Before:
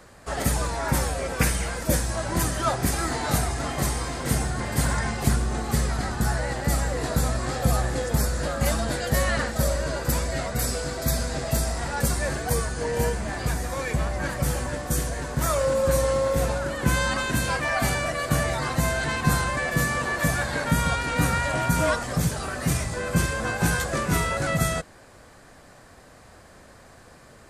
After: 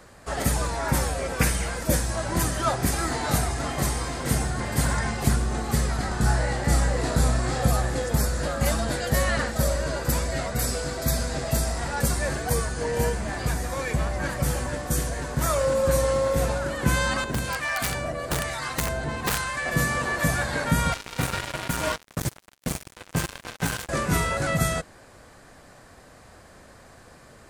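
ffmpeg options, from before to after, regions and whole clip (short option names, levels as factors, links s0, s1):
-filter_complex "[0:a]asettb=1/sr,asplit=3[s0][s1][s2];[s0]atrim=end=6.084[s3];[s1]atrim=start=6.08:end=7.68,asetpts=PTS-STARTPTS,afade=t=in:d=0.004:c=qsin,afade=t=out:st=1.596:d=0.004:c=qsin,lowpass=f=11000:w=0.5412,lowpass=f=11000:w=1.3066,asplit=2[s4][s5];[s5]adelay=33,volume=0.596[s6];[s4][s6]amix=inputs=2:normalize=0,atrim=end_sample=70560[s7];[s2]atrim=start=7.676[s8];[s3][s7]acrossfade=d=0.004:c1=hsin:c2=qsin[s9];[s9][s8]acrossfade=d=0.004:c1=qsin:c2=hsin,asettb=1/sr,asplit=3[s10][s11][s12];[s10]atrim=end=17.244[s13];[s11]atrim=start=17.24:end=19.66,asetpts=PTS-STARTPTS,afade=t=in:d=0.004:c=qsin,afade=t=out:st=2.416:d=0.004:c=qsin,aeval=exprs='(mod(5.31*val(0)+1,2)-1)/5.31':c=same,acrossover=split=950[s14][s15];[s14]aeval=exprs='val(0)*(1-0.7/2+0.7/2*cos(2*PI*1.1*n/s))':c=same[s16];[s15]aeval=exprs='val(0)*(1-0.7/2-0.7/2*cos(2*PI*1.1*n/s))':c=same[s17];[s16][s17]amix=inputs=2:normalize=0[s18];[s12]atrim=start=19.656[s19];[s13][s18]acrossfade=d=0.004:c1=hsin:c2=qsin[s20];[s20][s19]acrossfade=d=0.004:c1=qsin:c2=hsin,asettb=1/sr,asplit=3[s21][s22][s23];[s21]atrim=end=20.924[s24];[s22]atrim=start=20.92:end=23.89,asetpts=PTS-STARTPTS,afade=t=in:d=0.004:c=qsin,afade=t=out:st=2.966:d=0.004:c=qsin,flanger=delay=2.7:depth=7.5:regen=53:speed=1.2:shape=triangular,acrusher=bits=3:mix=0:aa=0.5[s25];[s23]atrim=start=23.886[s26];[s24][s25]acrossfade=d=0.004:c1=hsin:c2=qsin[s27];[s27][s26]acrossfade=d=0.004:c1=qsin:c2=hsin"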